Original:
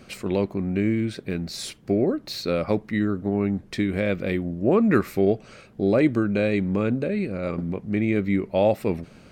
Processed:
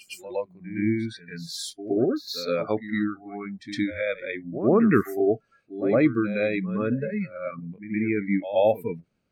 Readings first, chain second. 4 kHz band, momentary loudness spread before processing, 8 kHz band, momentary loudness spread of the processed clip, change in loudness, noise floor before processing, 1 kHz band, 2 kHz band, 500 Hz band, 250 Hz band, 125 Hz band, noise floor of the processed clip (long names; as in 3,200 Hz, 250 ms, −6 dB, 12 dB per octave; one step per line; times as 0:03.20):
−0.5 dB, 8 LU, can't be measured, 13 LU, −1.5 dB, −50 dBFS, −0.5 dB, −0.5 dB, −1.5 dB, −2.5 dB, −5.5 dB, −69 dBFS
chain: noise reduction from a noise print of the clip's start 27 dB
echo ahead of the sound 113 ms −12 dB